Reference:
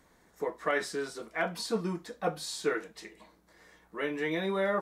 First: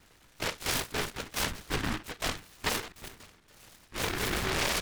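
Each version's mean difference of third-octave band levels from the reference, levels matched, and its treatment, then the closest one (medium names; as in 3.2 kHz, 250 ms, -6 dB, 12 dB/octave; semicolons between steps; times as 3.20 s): 12.0 dB: saturation -30 dBFS, distortion -10 dB; brick-wall FIR low-pass 2.8 kHz; LPC vocoder at 8 kHz whisper; delay time shaken by noise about 1.4 kHz, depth 0.47 ms; trim +4 dB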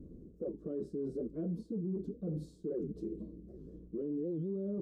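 16.0 dB: inverse Chebyshev low-pass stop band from 770 Hz, stop band 40 dB; reverse; compression 6:1, threshold -46 dBFS, peak gain reduction 16 dB; reverse; peak limiter -48 dBFS, peak gain reduction 11 dB; warped record 78 rpm, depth 250 cents; trim +17.5 dB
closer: first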